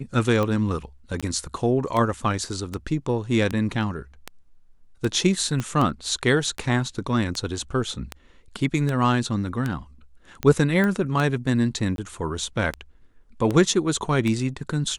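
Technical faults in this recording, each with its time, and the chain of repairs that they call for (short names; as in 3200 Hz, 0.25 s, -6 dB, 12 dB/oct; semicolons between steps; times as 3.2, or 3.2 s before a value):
tick 78 rpm -13 dBFS
1.21–1.23 gap 16 ms
5.6 pop -14 dBFS
10.84 pop -13 dBFS
11.96–11.98 gap 22 ms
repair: de-click; interpolate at 1.21, 16 ms; interpolate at 11.96, 22 ms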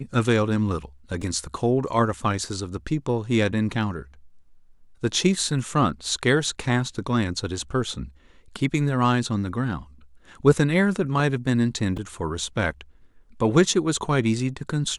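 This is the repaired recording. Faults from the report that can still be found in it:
5.6 pop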